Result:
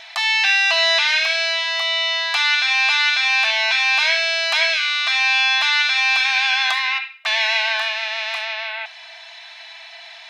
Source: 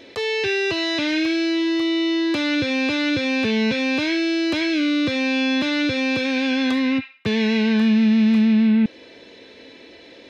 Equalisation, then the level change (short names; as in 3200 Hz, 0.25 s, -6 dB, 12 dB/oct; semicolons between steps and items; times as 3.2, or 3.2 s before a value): brick-wall FIR high-pass 640 Hz; +9.0 dB